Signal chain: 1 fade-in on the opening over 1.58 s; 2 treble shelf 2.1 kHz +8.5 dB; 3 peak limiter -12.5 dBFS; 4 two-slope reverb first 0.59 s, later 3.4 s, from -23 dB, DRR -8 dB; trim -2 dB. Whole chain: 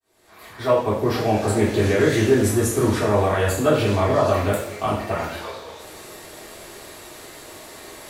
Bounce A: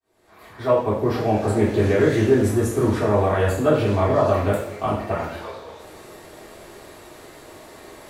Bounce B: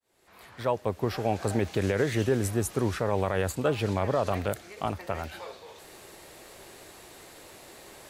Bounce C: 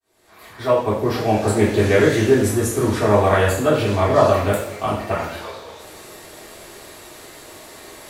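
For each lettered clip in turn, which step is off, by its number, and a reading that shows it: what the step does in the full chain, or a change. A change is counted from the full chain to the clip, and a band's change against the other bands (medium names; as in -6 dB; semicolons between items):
2, 8 kHz band -7.5 dB; 4, 125 Hz band +1.5 dB; 3, momentary loudness spread change -8 LU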